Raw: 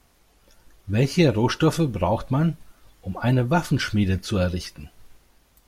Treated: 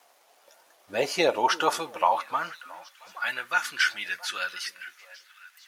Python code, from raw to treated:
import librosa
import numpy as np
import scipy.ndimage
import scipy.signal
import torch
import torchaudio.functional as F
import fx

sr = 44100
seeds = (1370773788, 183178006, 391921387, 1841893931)

y = fx.dmg_crackle(x, sr, seeds[0], per_s=360.0, level_db=-52.0)
y = fx.wow_flutter(y, sr, seeds[1], rate_hz=2.1, depth_cents=29.0)
y = fx.echo_stepped(y, sr, ms=337, hz=270.0, octaves=1.4, feedback_pct=70, wet_db=-11)
y = fx.filter_sweep_highpass(y, sr, from_hz=650.0, to_hz=1600.0, start_s=1.15, end_s=3.21, q=2.2)